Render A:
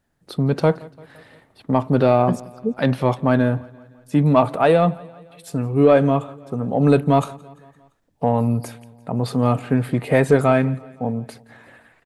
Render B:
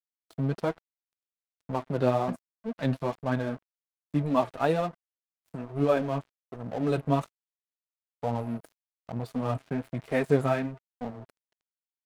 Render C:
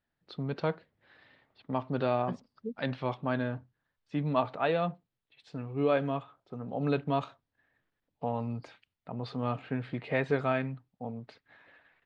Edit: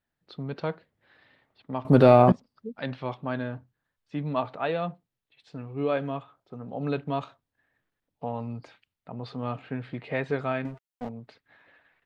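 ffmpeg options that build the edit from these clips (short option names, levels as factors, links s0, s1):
-filter_complex "[2:a]asplit=3[s0][s1][s2];[s0]atrim=end=1.852[s3];[0:a]atrim=start=1.848:end=2.322[s4];[s1]atrim=start=2.318:end=10.652[s5];[1:a]atrim=start=10.648:end=11.092[s6];[s2]atrim=start=11.088[s7];[s3][s4]acrossfade=d=0.004:c1=hsin:c2=hsin[s8];[s8][s5]acrossfade=d=0.004:c1=hsin:c2=hsin[s9];[s9][s6]acrossfade=d=0.004:c1=hsin:c2=hsin[s10];[s10][s7]acrossfade=d=0.004:c1=hsin:c2=hsin"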